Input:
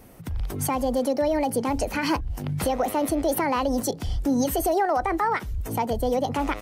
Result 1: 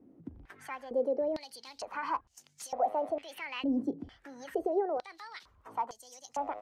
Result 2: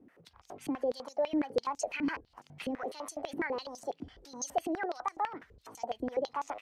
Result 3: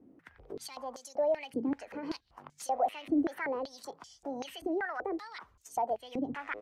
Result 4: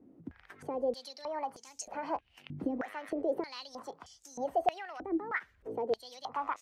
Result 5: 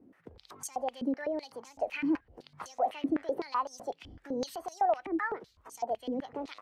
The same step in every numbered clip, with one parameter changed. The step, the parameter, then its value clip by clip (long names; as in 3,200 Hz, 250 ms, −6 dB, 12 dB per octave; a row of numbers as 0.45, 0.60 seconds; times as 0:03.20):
band-pass on a step sequencer, speed: 2.2, 12, 5.2, 3.2, 7.9 Hertz